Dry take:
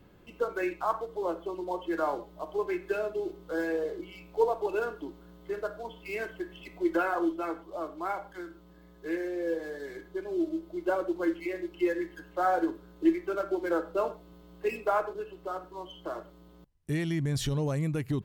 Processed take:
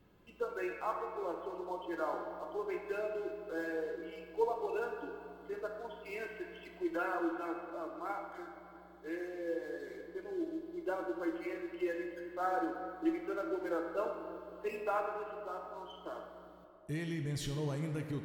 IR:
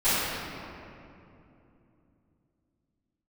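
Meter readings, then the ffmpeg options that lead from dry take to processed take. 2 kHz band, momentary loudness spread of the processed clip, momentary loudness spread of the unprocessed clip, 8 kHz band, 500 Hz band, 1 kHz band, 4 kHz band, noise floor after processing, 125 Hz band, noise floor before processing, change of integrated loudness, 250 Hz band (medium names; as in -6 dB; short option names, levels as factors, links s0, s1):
-6.0 dB, 11 LU, 12 LU, no reading, -6.5 dB, -6.0 dB, -6.5 dB, -56 dBFS, -8.0 dB, -55 dBFS, -7.0 dB, -7.5 dB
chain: -filter_complex "[0:a]asplit=2[s0][s1];[s1]highpass=f=410:p=1[s2];[1:a]atrim=start_sample=2205[s3];[s2][s3]afir=irnorm=-1:irlink=0,volume=0.119[s4];[s0][s4]amix=inputs=2:normalize=0,volume=0.376"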